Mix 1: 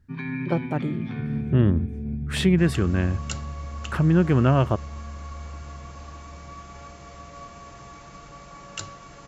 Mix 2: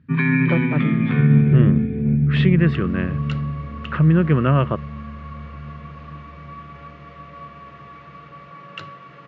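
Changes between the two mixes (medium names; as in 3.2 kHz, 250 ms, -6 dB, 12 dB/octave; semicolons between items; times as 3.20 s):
first sound +11.0 dB; master: add cabinet simulation 140–3500 Hz, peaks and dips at 150 Hz +9 dB, 490 Hz +4 dB, 790 Hz -7 dB, 1.2 kHz +6 dB, 1.9 kHz +5 dB, 2.7 kHz +3 dB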